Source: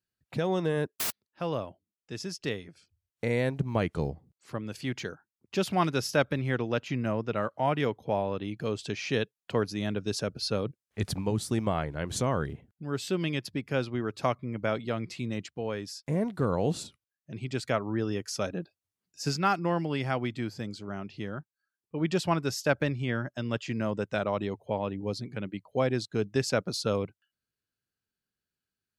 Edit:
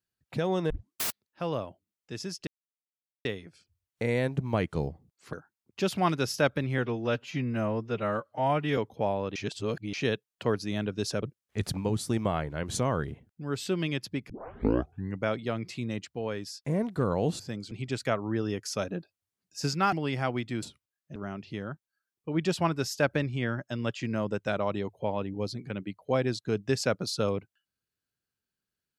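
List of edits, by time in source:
0.7 tape start 0.29 s
2.47 insert silence 0.78 s
4.55–5.08 cut
6.53–7.86 stretch 1.5×
8.44–9.02 reverse
10.31–10.64 cut
13.71 tape start 0.94 s
16.81–17.34 swap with 20.5–20.82
19.55–19.8 cut

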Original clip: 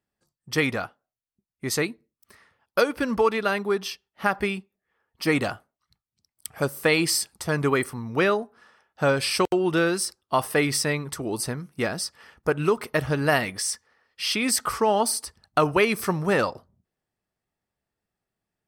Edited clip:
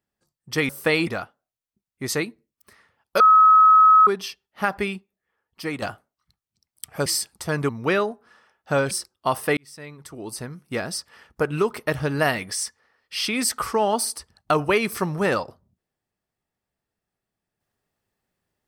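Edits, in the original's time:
2.82–3.69 bleep 1280 Hz -9.5 dBFS
4.55–5.44 fade out, to -9 dB
6.68–7.06 move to 0.69
7.69–8 cut
9.22–9.98 cut
10.64–12.02 fade in

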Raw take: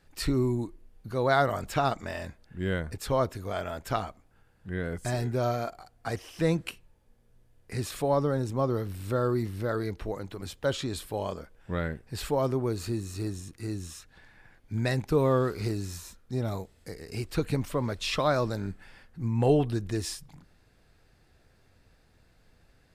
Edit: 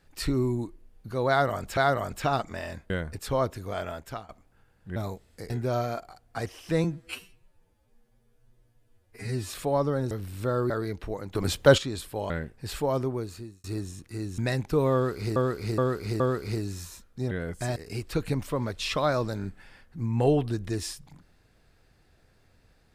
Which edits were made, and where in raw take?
1.29–1.77 loop, 2 plays
2.42–2.69 cut
3.68–4.08 fade out, to -20 dB
4.75–5.2 swap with 16.44–16.98
6.54–7.87 stretch 2×
8.48–8.78 cut
9.37–9.68 cut
10.33–10.76 gain +11 dB
11.28–11.79 cut
12.5–13.13 fade out
13.87–14.77 cut
15.33–15.75 loop, 4 plays

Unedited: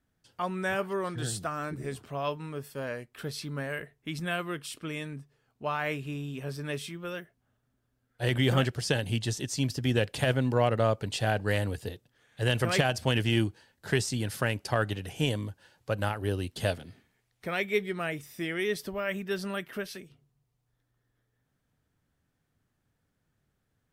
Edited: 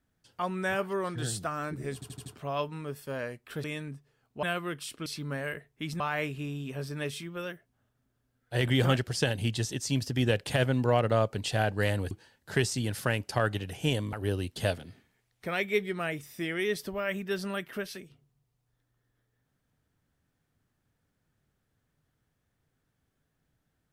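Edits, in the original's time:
1.94 stutter 0.08 s, 5 plays
3.32–4.26 swap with 4.89–5.68
11.79–13.47 cut
15.49–16.13 cut

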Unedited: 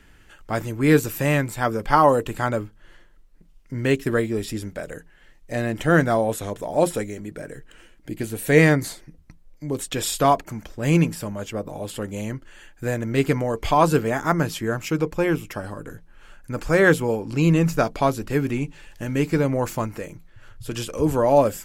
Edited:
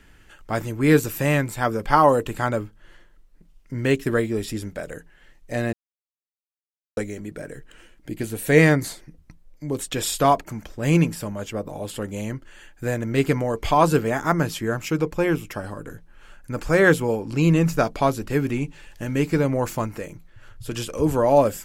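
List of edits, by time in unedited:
5.73–6.97 mute

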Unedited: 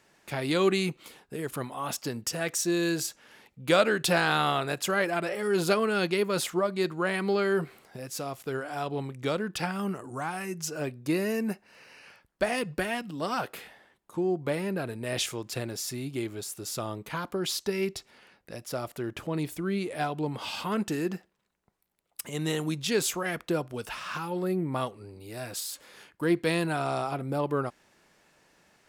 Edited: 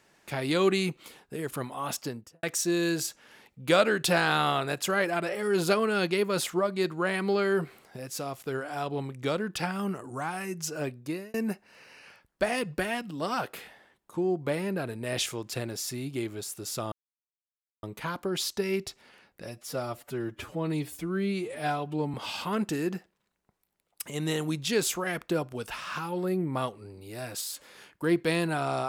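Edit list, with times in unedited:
1.97–2.43 studio fade out
10.89–11.34 fade out
16.92 insert silence 0.91 s
18.53–20.33 stretch 1.5×

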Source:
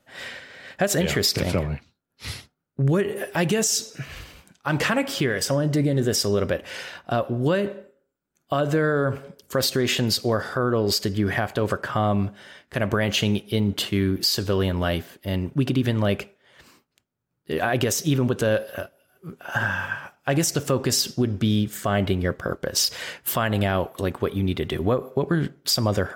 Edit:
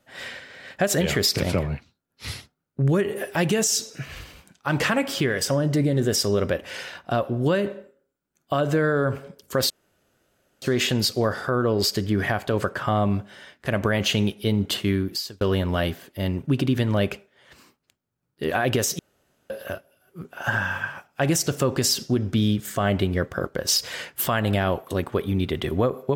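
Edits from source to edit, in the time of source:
9.7 insert room tone 0.92 s
13.98–14.49 fade out
18.07–18.58 room tone

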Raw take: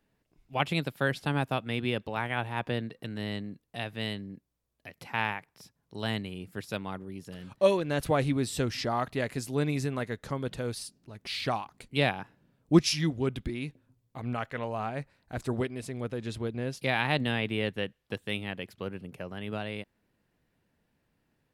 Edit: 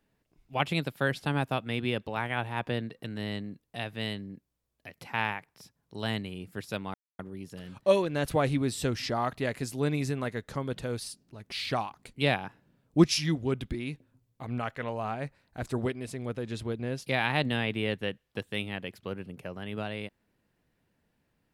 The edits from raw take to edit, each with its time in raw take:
6.94 insert silence 0.25 s

